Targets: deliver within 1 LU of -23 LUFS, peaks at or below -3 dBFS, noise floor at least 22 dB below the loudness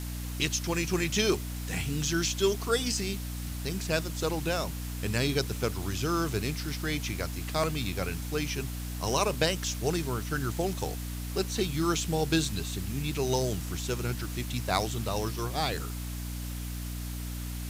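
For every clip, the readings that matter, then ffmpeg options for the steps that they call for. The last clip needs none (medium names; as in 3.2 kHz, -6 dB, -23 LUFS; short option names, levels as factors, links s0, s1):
hum 60 Hz; highest harmonic 300 Hz; hum level -34 dBFS; noise floor -36 dBFS; noise floor target -53 dBFS; loudness -31.0 LUFS; peak level -10.5 dBFS; loudness target -23.0 LUFS
-> -af "bandreject=f=60:t=h:w=6,bandreject=f=120:t=h:w=6,bandreject=f=180:t=h:w=6,bandreject=f=240:t=h:w=6,bandreject=f=300:t=h:w=6"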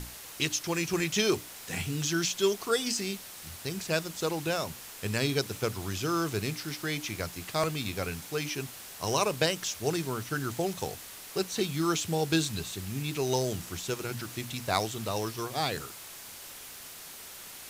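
hum not found; noise floor -46 dBFS; noise floor target -53 dBFS
-> -af "afftdn=nr=7:nf=-46"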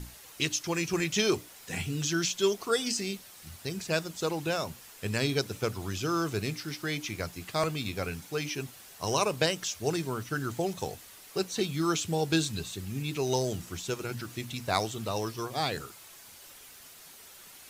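noise floor -51 dBFS; noise floor target -54 dBFS
-> -af "afftdn=nr=6:nf=-51"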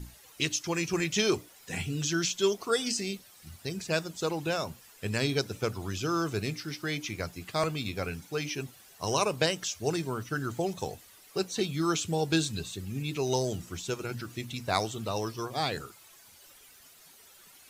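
noise floor -56 dBFS; loudness -31.5 LUFS; peak level -10.5 dBFS; loudness target -23.0 LUFS
-> -af "volume=2.66,alimiter=limit=0.708:level=0:latency=1"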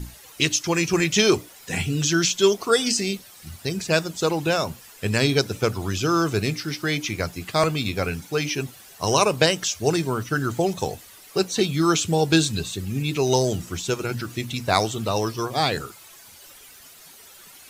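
loudness -23.0 LUFS; peak level -3.0 dBFS; noise floor -47 dBFS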